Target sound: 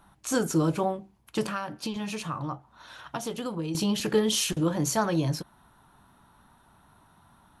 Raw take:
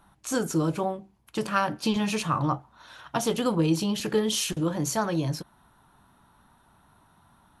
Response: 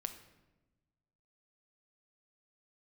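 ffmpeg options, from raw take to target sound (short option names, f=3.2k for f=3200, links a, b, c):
-filter_complex "[0:a]asettb=1/sr,asplit=3[a][b][c];[a]atrim=end=1.504[d];[b]atrim=start=1.5:end=3.75,asetpts=PTS-STARTPTS,afade=t=in:d=0.004:c=qsin,afade=t=out:st=2.246:d=0.004:c=qsin,acompressor=threshold=-35dB:ratio=2.5[e];[c]atrim=start=3.746[f];[d][e]acrossfade=d=0.004:c1=hsin:c2=qsin[g];[g][f]acrossfade=d=0.004:c1=qsin:c2=hsin,volume=1dB"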